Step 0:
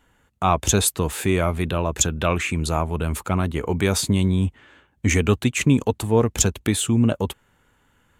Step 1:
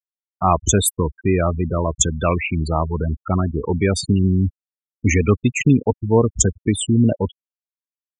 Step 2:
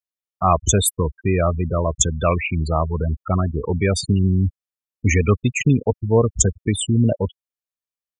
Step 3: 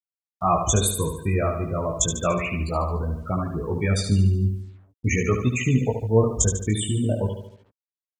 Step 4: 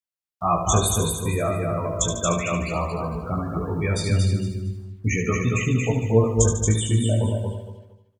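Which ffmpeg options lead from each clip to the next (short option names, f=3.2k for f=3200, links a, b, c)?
-af "afftfilt=real='re*gte(hypot(re,im),0.126)':imag='im*gte(hypot(re,im),0.126)':win_size=1024:overlap=0.75,volume=3dB"
-af "aecho=1:1:1.7:0.32,volume=-1dB"
-af "aecho=1:1:73|146|219|292|365|438:0.447|0.223|0.112|0.0558|0.0279|0.014,acrusher=bits=8:mix=0:aa=0.5,flanger=delay=16:depth=3.7:speed=0.36,volume=-1.5dB"
-filter_complex "[0:a]asplit=2[a][b];[b]adelay=18,volume=-7.5dB[c];[a][c]amix=inputs=2:normalize=0,asplit=2[d][e];[e]aecho=0:1:229|458|687:0.631|0.158|0.0394[f];[d][f]amix=inputs=2:normalize=0,volume=-1.5dB"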